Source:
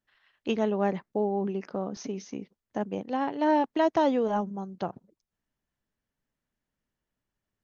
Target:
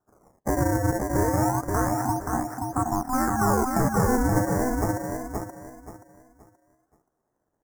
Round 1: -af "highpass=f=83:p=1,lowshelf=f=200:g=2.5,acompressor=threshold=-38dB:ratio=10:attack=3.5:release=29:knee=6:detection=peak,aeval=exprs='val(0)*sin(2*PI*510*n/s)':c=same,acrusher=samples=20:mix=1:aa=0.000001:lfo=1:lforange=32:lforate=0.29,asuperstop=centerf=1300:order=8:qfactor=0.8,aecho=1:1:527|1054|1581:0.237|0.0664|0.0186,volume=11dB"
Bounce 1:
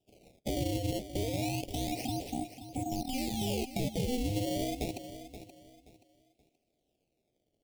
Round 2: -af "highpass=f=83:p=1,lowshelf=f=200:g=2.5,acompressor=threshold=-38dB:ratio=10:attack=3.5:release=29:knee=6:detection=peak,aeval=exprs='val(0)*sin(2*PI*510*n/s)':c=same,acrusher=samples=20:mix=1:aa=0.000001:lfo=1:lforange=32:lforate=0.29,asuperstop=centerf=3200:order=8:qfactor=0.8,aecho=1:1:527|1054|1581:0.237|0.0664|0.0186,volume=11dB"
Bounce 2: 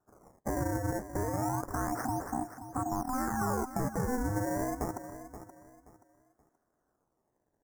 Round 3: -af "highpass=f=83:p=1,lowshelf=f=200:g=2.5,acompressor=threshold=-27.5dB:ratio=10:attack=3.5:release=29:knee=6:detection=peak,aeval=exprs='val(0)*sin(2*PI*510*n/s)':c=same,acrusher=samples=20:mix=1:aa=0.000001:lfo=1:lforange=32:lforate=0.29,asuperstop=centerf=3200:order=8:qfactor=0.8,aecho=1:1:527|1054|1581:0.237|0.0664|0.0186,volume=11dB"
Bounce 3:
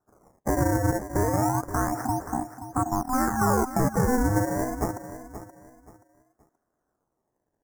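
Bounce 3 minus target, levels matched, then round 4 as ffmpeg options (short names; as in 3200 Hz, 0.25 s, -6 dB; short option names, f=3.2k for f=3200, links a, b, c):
echo-to-direct -8.5 dB
-af "highpass=f=83:p=1,lowshelf=f=200:g=2.5,acompressor=threshold=-27.5dB:ratio=10:attack=3.5:release=29:knee=6:detection=peak,aeval=exprs='val(0)*sin(2*PI*510*n/s)':c=same,acrusher=samples=20:mix=1:aa=0.000001:lfo=1:lforange=32:lforate=0.29,asuperstop=centerf=3200:order=8:qfactor=0.8,aecho=1:1:527|1054|1581|2108:0.631|0.177|0.0495|0.0139,volume=11dB"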